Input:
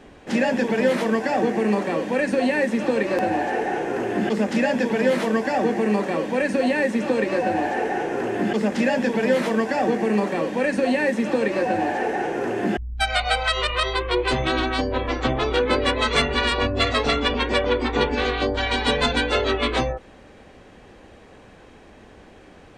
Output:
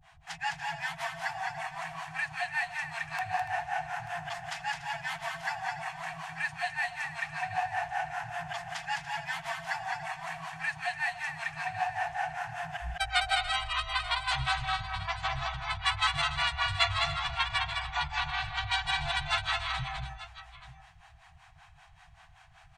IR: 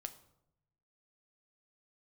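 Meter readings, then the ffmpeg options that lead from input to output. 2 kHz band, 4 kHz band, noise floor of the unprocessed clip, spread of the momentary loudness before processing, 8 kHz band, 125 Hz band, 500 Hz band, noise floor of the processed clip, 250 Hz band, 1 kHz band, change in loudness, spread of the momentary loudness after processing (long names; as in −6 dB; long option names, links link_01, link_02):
−6.0 dB, −6.0 dB, −47 dBFS, 4 LU, −6.5 dB, −10.0 dB, −22.5 dB, −57 dBFS, below −30 dB, −7.0 dB, −10.0 dB, 9 LU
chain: -filter_complex "[0:a]acrossover=split=480[link_01][link_02];[link_01]aeval=exprs='val(0)*(1-1/2+1/2*cos(2*PI*5.2*n/s))':channel_layout=same[link_03];[link_02]aeval=exprs='val(0)*(1-1/2-1/2*cos(2*PI*5.2*n/s))':channel_layout=same[link_04];[link_03][link_04]amix=inputs=2:normalize=0,aecho=1:1:158|208|287|886:0.126|0.596|0.2|0.158,afftfilt=real='re*(1-between(b*sr/4096,170,650))':imag='im*(1-between(b*sr/4096,170,650))':win_size=4096:overlap=0.75,volume=-3.5dB"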